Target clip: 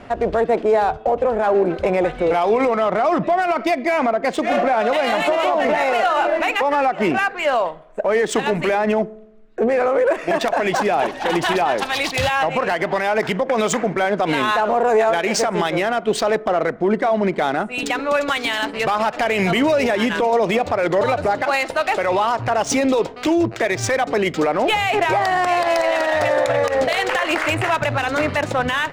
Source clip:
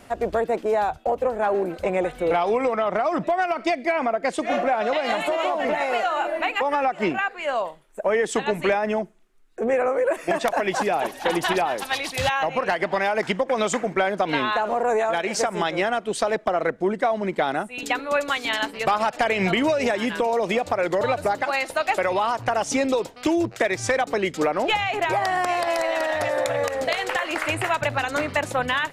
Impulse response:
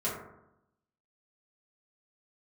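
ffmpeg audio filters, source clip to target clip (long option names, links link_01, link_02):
-filter_complex "[0:a]adynamicsmooth=sensitivity=6:basefreq=3200,alimiter=limit=-19dB:level=0:latency=1:release=48,asplit=2[link_01][link_02];[1:a]atrim=start_sample=2205[link_03];[link_02][link_03]afir=irnorm=-1:irlink=0,volume=-26.5dB[link_04];[link_01][link_04]amix=inputs=2:normalize=0,volume=8.5dB"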